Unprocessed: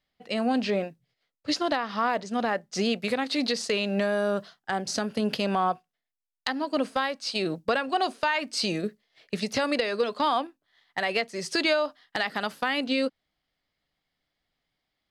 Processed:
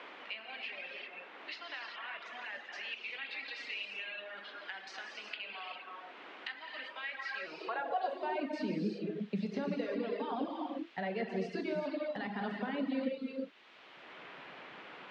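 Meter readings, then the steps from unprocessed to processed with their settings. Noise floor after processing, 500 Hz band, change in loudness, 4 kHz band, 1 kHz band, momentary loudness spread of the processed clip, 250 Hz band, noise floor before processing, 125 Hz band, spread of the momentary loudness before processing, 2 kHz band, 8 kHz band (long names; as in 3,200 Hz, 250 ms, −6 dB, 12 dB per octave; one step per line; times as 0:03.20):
−53 dBFS, −11.5 dB, −12.0 dB, −14.0 dB, −12.5 dB, 12 LU, −9.5 dB, −85 dBFS, −8.5 dB, 7 LU, −9.5 dB, below −25 dB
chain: reversed playback
downward compressor, threshold −34 dBFS, peak gain reduction 13.5 dB
reversed playback
head-to-tape spacing loss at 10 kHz 35 dB
reverb whose tail is shaped and stops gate 420 ms flat, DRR −2.5 dB
reverb reduction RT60 1.1 s
high-pass filter sweep 2,600 Hz → 190 Hz, 0:07.01–0:08.85
parametric band 1,200 Hz −6.5 dB 0.24 octaves
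noise in a band 260–3,100 Hz −68 dBFS
multiband upward and downward compressor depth 70%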